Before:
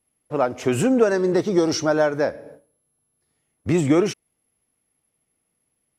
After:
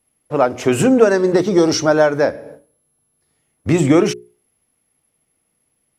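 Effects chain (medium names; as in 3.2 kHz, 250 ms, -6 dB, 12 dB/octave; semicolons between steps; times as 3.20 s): hum notches 60/120/180/240/300/360/420 Hz; trim +6 dB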